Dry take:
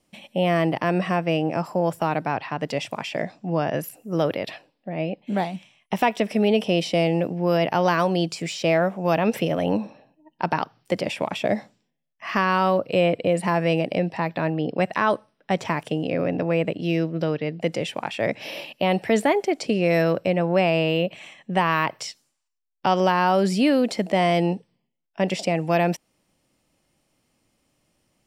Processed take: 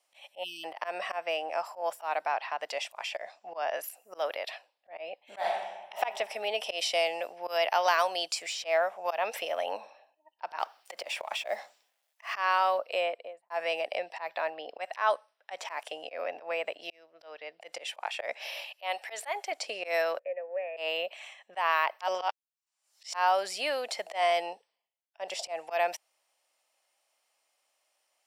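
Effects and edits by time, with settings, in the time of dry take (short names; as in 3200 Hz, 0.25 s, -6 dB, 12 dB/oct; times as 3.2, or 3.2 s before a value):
0.44–0.64 spectral delete 360–2500 Hz
5.23–5.95 reverb throw, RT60 1.1 s, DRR -0.5 dB
6.63–8.39 high shelf 2700 Hz +6 dB
10.59–12.34 G.711 law mismatch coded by mu
12.92–13.5 studio fade out
16.9–17.83 fade in
18.47–19.52 HPF 670 Hz 6 dB/oct
20.19–20.77 vocal tract filter e
22.01–23.14 reverse
24.48–25.59 dynamic EQ 2200 Hz, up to -6 dB, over -45 dBFS, Q 1.6
whole clip: Chebyshev high-pass 660 Hz, order 3; auto swell 0.107 s; gain -3 dB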